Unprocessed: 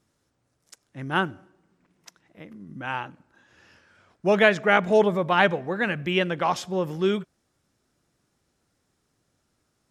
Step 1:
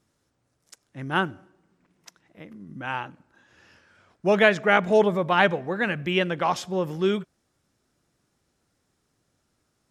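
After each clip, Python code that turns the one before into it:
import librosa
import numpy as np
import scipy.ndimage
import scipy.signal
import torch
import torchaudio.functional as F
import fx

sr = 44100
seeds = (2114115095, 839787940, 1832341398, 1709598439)

y = x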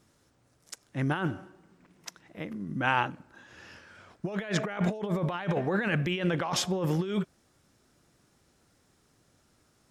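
y = fx.over_compress(x, sr, threshold_db=-30.0, ratio=-1.0)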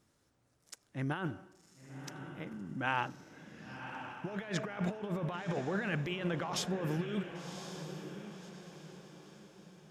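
y = fx.echo_diffused(x, sr, ms=1074, feedback_pct=41, wet_db=-9)
y = y * 10.0 ** (-7.0 / 20.0)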